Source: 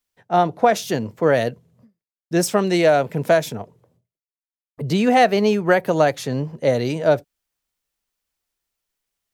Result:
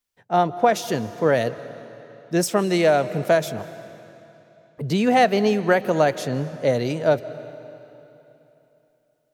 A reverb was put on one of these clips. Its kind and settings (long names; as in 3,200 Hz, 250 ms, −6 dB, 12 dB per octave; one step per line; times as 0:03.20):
comb and all-pass reverb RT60 3.2 s, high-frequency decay 0.9×, pre-delay 115 ms, DRR 15 dB
level −2 dB